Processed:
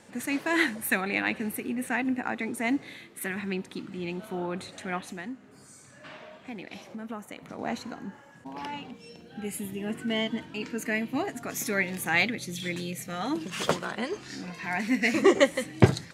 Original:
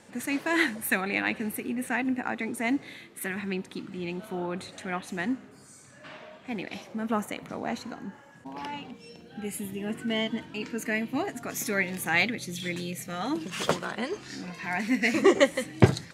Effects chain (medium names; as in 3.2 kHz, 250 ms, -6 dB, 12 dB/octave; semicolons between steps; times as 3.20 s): 5.00–7.59 s: compression 2.5:1, threshold -39 dBFS, peak gain reduction 11.5 dB